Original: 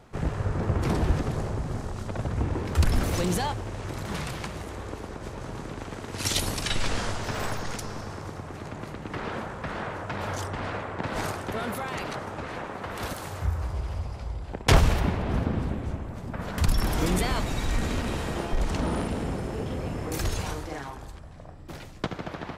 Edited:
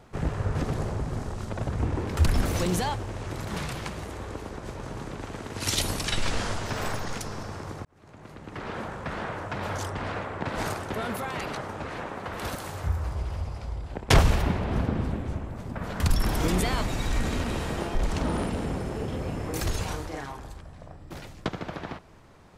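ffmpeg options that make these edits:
ffmpeg -i in.wav -filter_complex "[0:a]asplit=3[link_01][link_02][link_03];[link_01]atrim=end=0.552[link_04];[link_02]atrim=start=1.128:end=8.43,asetpts=PTS-STARTPTS,afade=type=out:start_time=7.298:duration=0.004:curve=hsin[link_05];[link_03]atrim=start=8.43,asetpts=PTS-STARTPTS,afade=type=in:duration=1.09[link_06];[link_05][link_06]concat=n=2:v=0:a=1[link_07];[link_04][link_07]acrossfade=duration=0.004:curve1=hsin:curve2=hsin" out.wav

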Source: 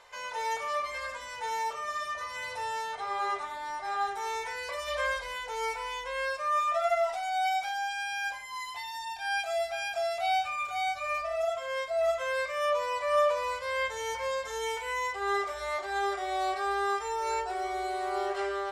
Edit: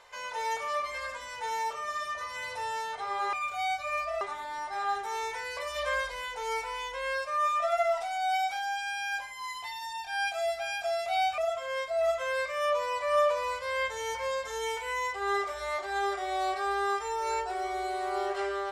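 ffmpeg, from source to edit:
ffmpeg -i in.wav -filter_complex "[0:a]asplit=4[link_01][link_02][link_03][link_04];[link_01]atrim=end=3.332[link_05];[link_02]atrim=start=10.498:end=11.382[link_06];[link_03]atrim=start=3.328:end=10.502[link_07];[link_04]atrim=start=11.378[link_08];[link_05][link_06]acrossfade=duration=0.004:curve1=hsin:curve2=hsin[link_09];[link_09][link_07]acrossfade=duration=0.004:curve1=hsin:curve2=hsin[link_10];[link_10][link_08]acrossfade=duration=0.004:curve1=hsin:curve2=hsin" out.wav

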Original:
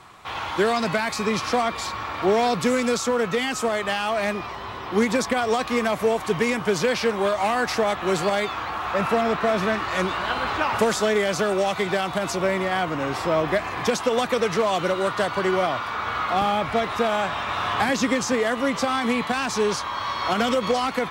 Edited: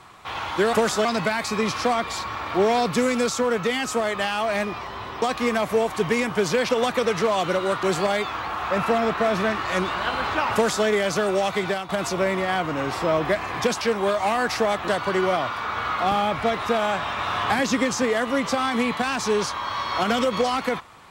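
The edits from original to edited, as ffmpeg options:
ffmpeg -i in.wav -filter_complex "[0:a]asplit=9[link_01][link_02][link_03][link_04][link_05][link_06][link_07][link_08][link_09];[link_01]atrim=end=0.732[link_10];[link_02]atrim=start=10.768:end=11.092[link_11];[link_03]atrim=start=0.728:end=4.902[link_12];[link_04]atrim=start=5.518:end=6.992[link_13];[link_05]atrim=start=14.038:end=15.182[link_14];[link_06]atrim=start=8.058:end=12.12,asetpts=PTS-STARTPTS,afade=type=out:start_time=3.762:duration=0.3:curve=qsin:silence=0.237137[link_15];[link_07]atrim=start=12.12:end=14.042,asetpts=PTS-STARTPTS,afade=type=in:duration=0.004:curve=hsin:silence=0.237137[link_16];[link_08]atrim=start=6.988:end=8.062[link_17];[link_09]atrim=start=15.178[link_18];[link_10][link_11]acrossfade=duration=0.004:curve1=hsin:curve2=hsin[link_19];[link_19][link_12]acrossfade=duration=0.004:curve1=hsin:curve2=hsin[link_20];[link_20][link_13]acrossfade=duration=0.004:curve1=hsin:curve2=hsin[link_21];[link_21][link_14]acrossfade=duration=0.004:curve1=hsin:curve2=hsin[link_22];[link_15][link_16]concat=n=2:v=0:a=1[link_23];[link_22][link_23]acrossfade=duration=0.004:curve1=hsin:curve2=hsin[link_24];[link_24][link_17]acrossfade=duration=0.004:curve1=hsin:curve2=hsin[link_25];[link_25][link_18]acrossfade=duration=0.004:curve1=hsin:curve2=hsin" out.wav

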